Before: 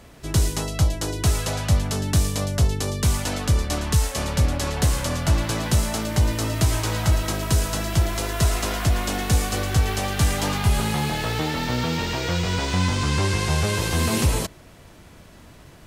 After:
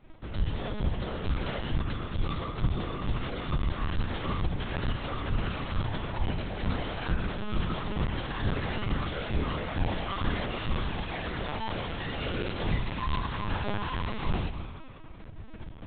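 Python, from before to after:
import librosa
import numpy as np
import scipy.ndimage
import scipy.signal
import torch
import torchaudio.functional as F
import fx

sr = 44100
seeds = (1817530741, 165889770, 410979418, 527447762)

p1 = fx.schmitt(x, sr, flips_db=-38.0)
p2 = x + F.gain(torch.from_numpy(p1), -4.0).numpy()
p3 = fx.comb_fb(p2, sr, f0_hz=69.0, decay_s=0.67, harmonics='odd', damping=0.0, mix_pct=90)
p4 = fx.rev_spring(p3, sr, rt60_s=2.6, pass_ms=(49, 59), chirp_ms=25, drr_db=8.0)
y = fx.lpc_vocoder(p4, sr, seeds[0], excitation='pitch_kept', order=10)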